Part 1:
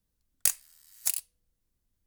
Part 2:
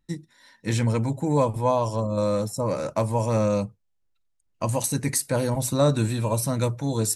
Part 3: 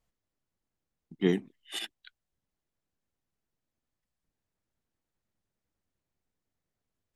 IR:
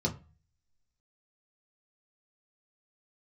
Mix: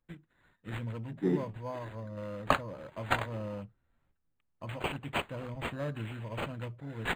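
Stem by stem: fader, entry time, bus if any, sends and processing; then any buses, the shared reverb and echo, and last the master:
+0.5 dB, 2.05 s, send −5 dB, reverb reduction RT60 0.69 s; parametric band 6,400 Hz +12.5 dB 1.5 octaves; downward compressor 3 to 1, threshold −20 dBFS, peak gain reduction 8 dB
−16.5 dB, 0.00 s, no send, bass and treble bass +8 dB, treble +13 dB; notch filter 840 Hz, Q 12
−6.0 dB, 0.00 s, send −6 dB, Butterworth low-pass 2,300 Hz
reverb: on, RT60 0.35 s, pre-delay 3 ms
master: parametric band 140 Hz −6 dB 2.2 octaves; linearly interpolated sample-rate reduction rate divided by 8×

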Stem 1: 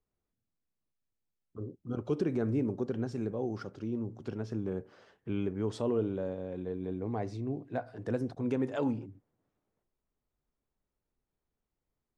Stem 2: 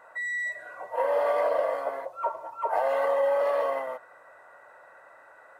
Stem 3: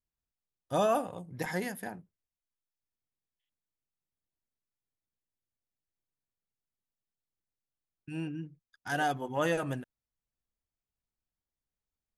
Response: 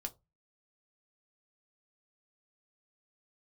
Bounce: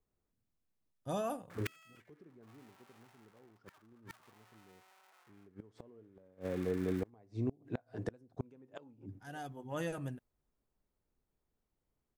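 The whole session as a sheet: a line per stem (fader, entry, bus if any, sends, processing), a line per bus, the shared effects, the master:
+2.0 dB, 0.00 s, no send, no processing
+0.5 dB, 1.50 s, no send, sub-harmonics by changed cycles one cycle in 3, inverted; soft clipping −23.5 dBFS, distortion −14 dB; high-pass filter 1,200 Hz 12 dB per octave
−12.0 dB, 0.35 s, no send, low-shelf EQ 300 Hz +9.5 dB; automatic ducking −9 dB, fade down 0.20 s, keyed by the first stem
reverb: not used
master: high-shelf EQ 5,000 Hz +6.5 dB; gate with flip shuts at −24 dBFS, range −30 dB; one half of a high-frequency compander decoder only

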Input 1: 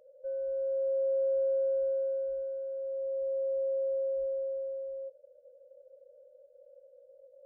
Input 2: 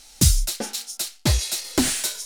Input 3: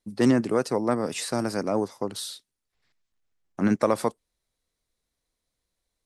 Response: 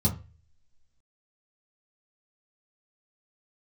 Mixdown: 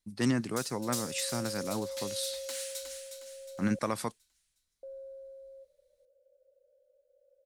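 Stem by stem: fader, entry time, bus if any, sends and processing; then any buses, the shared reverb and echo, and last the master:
−0.5 dB, 0.55 s, muted 0:03.79–0:04.83, no send, no echo send, no processing
−12.0 dB, 0.35 s, no send, echo send −3.5 dB, high-pass filter 810 Hz 12 dB per octave; automatic ducking −23 dB, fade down 1.65 s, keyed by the third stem
−1.5 dB, 0.00 s, no send, no echo send, no processing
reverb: not used
echo: repeating echo 362 ms, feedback 43%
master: parametric band 490 Hz −11 dB 2.3 octaves

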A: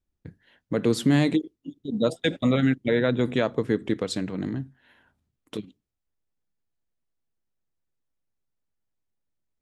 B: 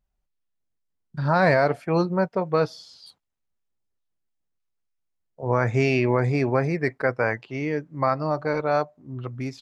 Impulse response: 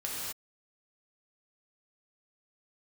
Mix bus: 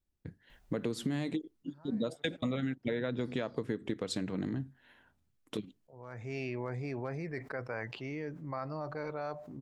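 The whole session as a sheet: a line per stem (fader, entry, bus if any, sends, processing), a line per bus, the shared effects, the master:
−3.0 dB, 0.00 s, no send, no processing
−19.0 dB, 0.50 s, no send, hard clipping −9 dBFS, distortion −38 dB; envelope flattener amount 70%; automatic ducking −22 dB, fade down 1.85 s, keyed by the first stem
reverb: not used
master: downward compressor 10 to 1, threshold −30 dBFS, peak gain reduction 12 dB

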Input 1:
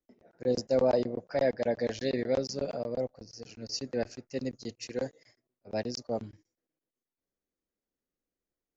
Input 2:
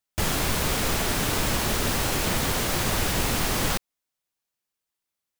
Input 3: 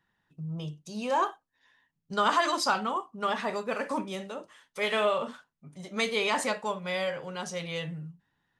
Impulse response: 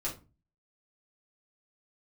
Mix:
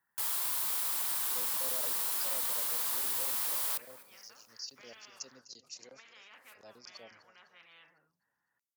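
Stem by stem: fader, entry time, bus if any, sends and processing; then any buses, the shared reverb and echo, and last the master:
0.0 dB, 0.90 s, no send, echo send −16.5 dB, parametric band 2,100 Hz −10.5 dB 0.78 octaves; treble cut that deepens with the level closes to 1,200 Hz, closed at −27 dBFS; background raised ahead of every attack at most 150 dB per second
−4.0 dB, 0.00 s, no send, echo send −22.5 dB, graphic EQ with 15 bands 160 Hz −9 dB, 1,000 Hz +10 dB, 2,500 Hz −4 dB, 6,300 Hz −6 dB
−12.0 dB, 0.00 s, no send, no echo send, de-essing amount 100%; low-pass filter 1,600 Hz 24 dB per octave; every bin compressed towards the loudest bin 4 to 1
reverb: not used
echo: repeating echo 252 ms, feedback 46%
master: high-pass filter 58 Hz; first-order pre-emphasis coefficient 0.97

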